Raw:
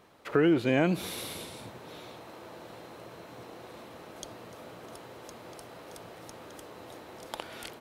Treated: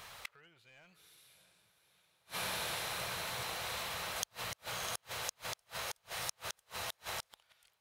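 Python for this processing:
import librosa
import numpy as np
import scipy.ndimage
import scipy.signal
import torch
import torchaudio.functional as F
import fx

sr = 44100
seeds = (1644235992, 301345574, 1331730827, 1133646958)

p1 = fx.tone_stack(x, sr, knobs='10-0-10')
p2 = 10.0 ** (-27.5 / 20.0) * np.tanh(p1 / 10.0 ** (-27.5 / 20.0))
p3 = p2 + fx.echo_diffused(p2, sr, ms=648, feedback_pct=49, wet_db=-11, dry=0)
p4 = np.clip(p3, -10.0 ** (-33.0 / 20.0), 10.0 ** (-33.0 / 20.0))
p5 = fx.gate_flip(p4, sr, shuts_db=-42.0, range_db=-38)
y = p5 * 10.0 ** (16.5 / 20.0)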